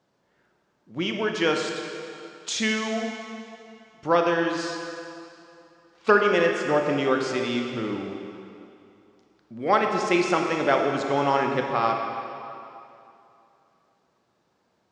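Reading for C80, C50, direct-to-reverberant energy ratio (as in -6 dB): 4.0 dB, 3.0 dB, 2.5 dB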